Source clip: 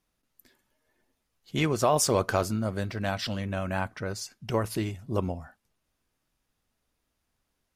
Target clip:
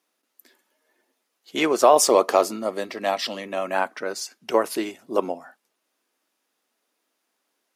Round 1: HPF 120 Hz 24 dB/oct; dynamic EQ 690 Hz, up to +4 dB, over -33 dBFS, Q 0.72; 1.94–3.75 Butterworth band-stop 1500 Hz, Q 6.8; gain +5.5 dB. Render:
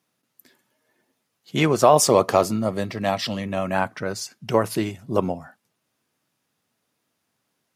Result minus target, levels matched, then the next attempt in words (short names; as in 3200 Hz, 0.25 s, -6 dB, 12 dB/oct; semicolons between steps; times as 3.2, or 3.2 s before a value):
125 Hz band +18.5 dB
HPF 280 Hz 24 dB/oct; dynamic EQ 690 Hz, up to +4 dB, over -33 dBFS, Q 0.72; 1.94–3.75 Butterworth band-stop 1500 Hz, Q 6.8; gain +5.5 dB